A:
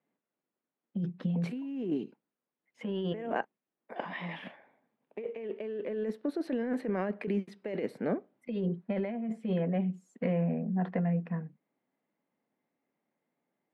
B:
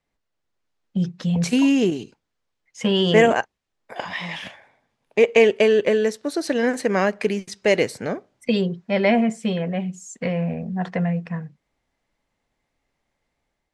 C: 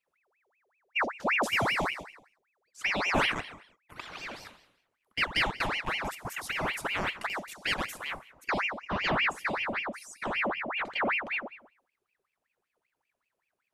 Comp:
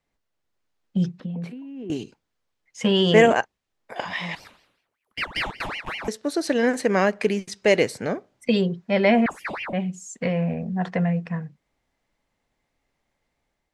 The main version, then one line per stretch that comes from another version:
B
1.20–1.90 s: from A
4.35–6.08 s: from C
9.26–9.73 s: from C

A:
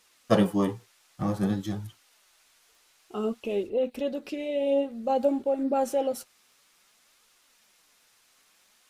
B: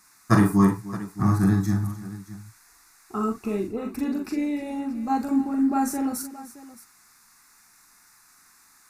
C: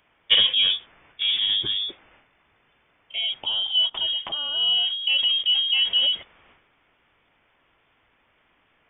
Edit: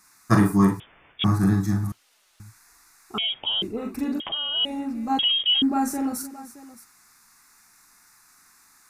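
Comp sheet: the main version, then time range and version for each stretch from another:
B
0.80–1.24 s: from C
1.92–2.40 s: from A
3.18–3.62 s: from C
4.20–4.65 s: from C
5.19–5.62 s: from C

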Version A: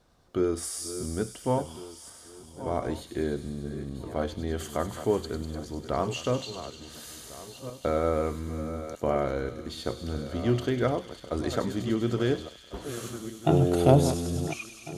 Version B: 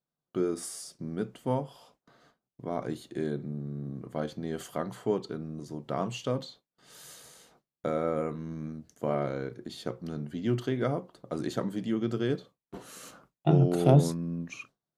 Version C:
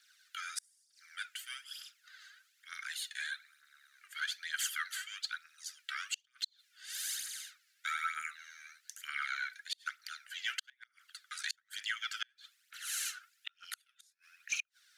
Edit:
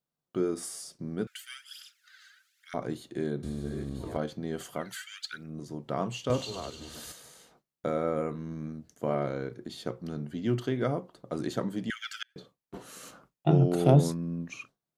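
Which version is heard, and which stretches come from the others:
B
1.27–2.74 s: from C
3.43–4.17 s: from A
4.85–5.44 s: from C, crossfade 0.24 s
6.30–7.12 s: from A
11.90–12.36 s: from C

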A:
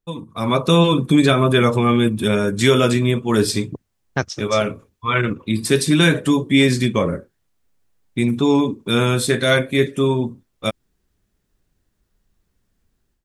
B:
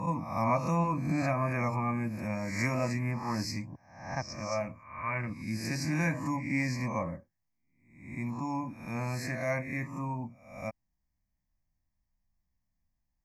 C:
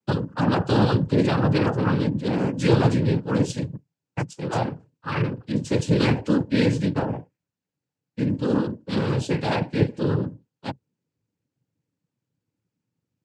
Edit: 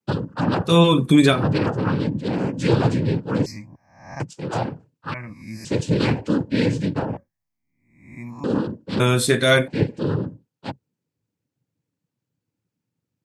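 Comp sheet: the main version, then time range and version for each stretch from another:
C
0.69–1.36 s: from A, crossfade 0.16 s
3.46–4.20 s: from B
5.14–5.65 s: from B
7.17–8.44 s: from B
9.00–9.68 s: from A

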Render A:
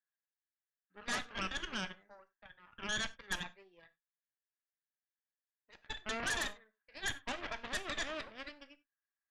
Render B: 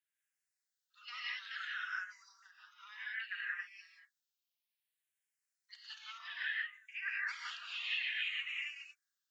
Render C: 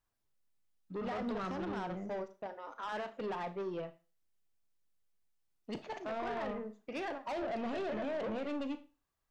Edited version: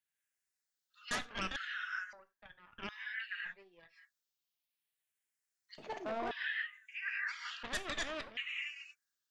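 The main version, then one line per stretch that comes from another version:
B
1.11–1.56 s: from A
2.13–2.89 s: from A
3.49–3.93 s: from A, crossfade 0.10 s
5.78–6.31 s: from C
7.63–8.37 s: from A

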